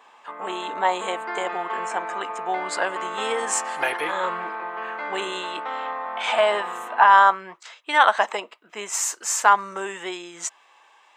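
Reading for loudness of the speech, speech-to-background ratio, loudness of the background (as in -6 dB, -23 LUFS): -23.0 LUFS, 8.0 dB, -31.0 LUFS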